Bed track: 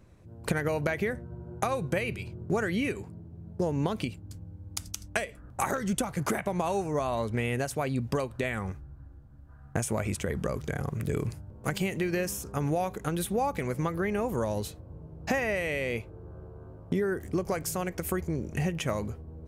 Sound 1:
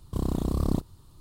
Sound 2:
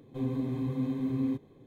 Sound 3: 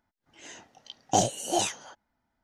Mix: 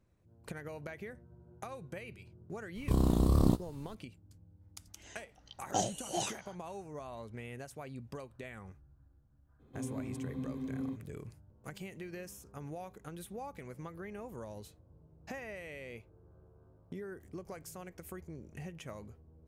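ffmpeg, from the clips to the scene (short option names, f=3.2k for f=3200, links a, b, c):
-filter_complex "[0:a]volume=-15.5dB[a];[1:a]asplit=2[b][c];[c]adelay=17,volume=-8dB[d];[b][d]amix=inputs=2:normalize=0,atrim=end=1.2,asetpts=PTS-STARTPTS,volume=-0.5dB,afade=t=in:d=0.004:c=hsin,afade=t=out:st=1.196:d=0.004:c=hsin,adelay=2750[e];[3:a]atrim=end=2.43,asetpts=PTS-STARTPTS,volume=-9dB,afade=t=in:d=0.004:c=hsin,afade=t=out:st=2.426:d=0.004:c=hsin,adelay=203301S[f];[2:a]atrim=end=1.66,asetpts=PTS-STARTPTS,volume=-8.5dB,afade=t=in:d=0.02,afade=t=out:st=1.64:d=0.02,adelay=9590[g];[a][e][f][g]amix=inputs=4:normalize=0"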